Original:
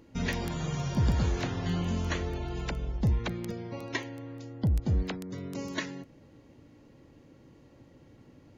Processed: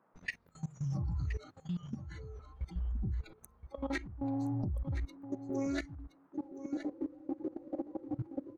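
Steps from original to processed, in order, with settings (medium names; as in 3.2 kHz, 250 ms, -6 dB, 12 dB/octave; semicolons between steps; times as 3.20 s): comb filter that takes the minimum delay 0.48 ms; recorder AGC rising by 40 dB/s; gate with hold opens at -25 dBFS; hum notches 50/100/150/200/250/300/350 Hz; spectral noise reduction 27 dB; treble shelf 2.6 kHz -9 dB; band noise 120–1300 Hz -67 dBFS; wow and flutter 26 cents; level held to a coarse grid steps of 19 dB; delay 1021 ms -12 dB; loudspeaker Doppler distortion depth 0.13 ms; trim +4 dB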